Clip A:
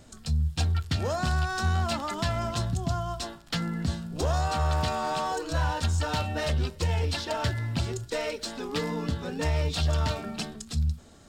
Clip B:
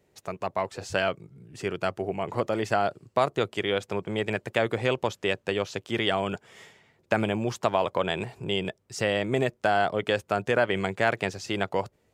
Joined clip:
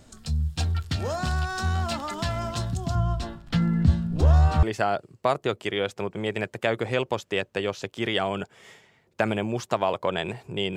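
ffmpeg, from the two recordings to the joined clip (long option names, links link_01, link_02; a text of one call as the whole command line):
ffmpeg -i cue0.wav -i cue1.wav -filter_complex "[0:a]asettb=1/sr,asplit=3[link_01][link_02][link_03];[link_01]atrim=end=2.954[link_04];[link_02]atrim=start=2.95:end=4.63,asetpts=PTS-STARTPTS,afade=type=in:duration=0.004:curve=qsin,afade=type=out:start_time=1.676:duration=0.004:curve=qsin,bass=frequency=250:gain=11,treble=frequency=4000:gain=-9[link_05];[link_03]atrim=start=4.626[link_06];[link_04][link_05]acrossfade=duration=0.004:curve1=hsin:curve2=qsin[link_07];[link_07][link_06]acrossfade=duration=0.004:curve1=qsin:curve2=hsin,apad=whole_dur=10.76,atrim=end=10.76,atrim=end=4.632[link_08];[1:a]atrim=start=2.548:end=8.68[link_09];[link_08][link_09]acrossfade=duration=0.004:curve1=hsin:curve2=hsin" out.wav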